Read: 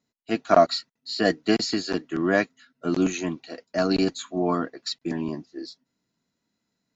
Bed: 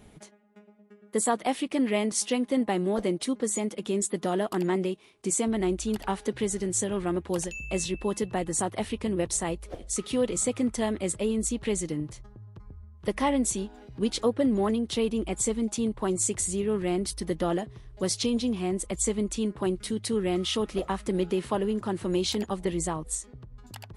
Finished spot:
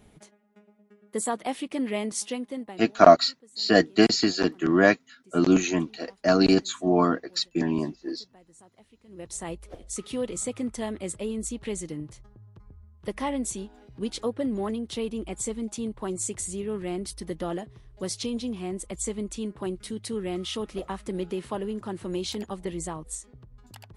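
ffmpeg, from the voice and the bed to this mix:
ffmpeg -i stem1.wav -i stem2.wav -filter_complex "[0:a]adelay=2500,volume=3dB[link_01];[1:a]volume=19.5dB,afade=type=out:start_time=2.18:duration=0.7:silence=0.0668344,afade=type=in:start_time=9.07:duration=0.45:silence=0.0749894[link_02];[link_01][link_02]amix=inputs=2:normalize=0" out.wav

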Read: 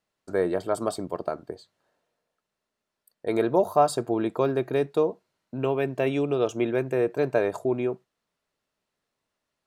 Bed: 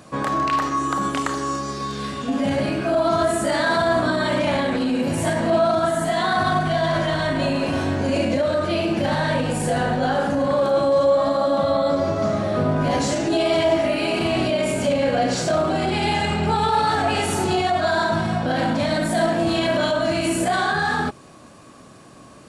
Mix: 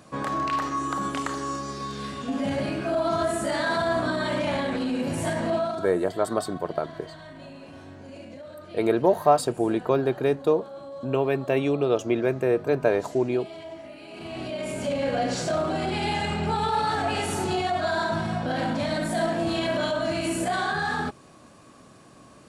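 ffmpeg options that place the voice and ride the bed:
ffmpeg -i stem1.wav -i stem2.wav -filter_complex "[0:a]adelay=5500,volume=1.5dB[link_01];[1:a]volume=10.5dB,afade=type=out:start_time=5.46:duration=0.48:silence=0.158489,afade=type=in:start_time=14.08:duration=1.05:silence=0.158489[link_02];[link_01][link_02]amix=inputs=2:normalize=0" out.wav

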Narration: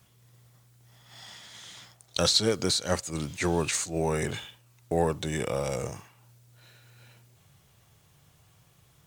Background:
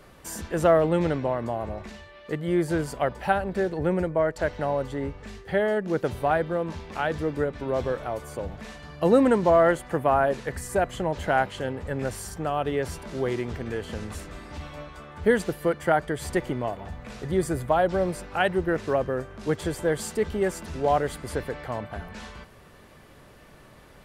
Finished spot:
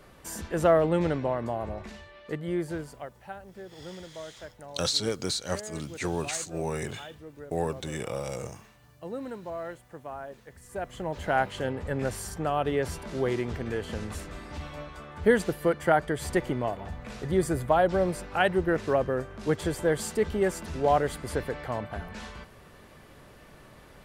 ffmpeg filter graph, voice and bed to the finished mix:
ffmpeg -i stem1.wav -i stem2.wav -filter_complex "[0:a]adelay=2600,volume=-4dB[link_01];[1:a]volume=15.5dB,afade=type=out:start_time=2.13:duration=0.99:silence=0.158489,afade=type=in:start_time=10.59:duration=1.02:silence=0.133352[link_02];[link_01][link_02]amix=inputs=2:normalize=0" out.wav

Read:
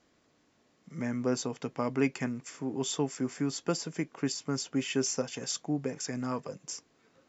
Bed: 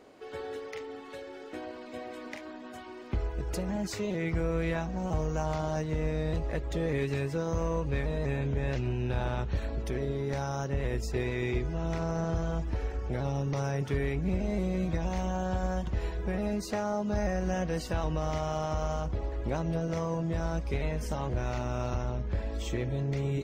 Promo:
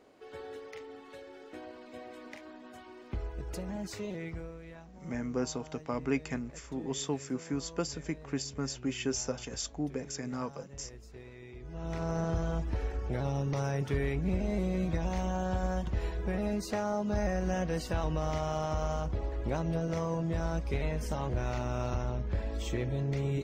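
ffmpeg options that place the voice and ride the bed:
ffmpeg -i stem1.wav -i stem2.wav -filter_complex "[0:a]adelay=4100,volume=-3dB[link_01];[1:a]volume=11.5dB,afade=type=out:start_time=4.06:duration=0.52:silence=0.237137,afade=type=in:start_time=11.58:duration=0.55:silence=0.141254[link_02];[link_01][link_02]amix=inputs=2:normalize=0" out.wav

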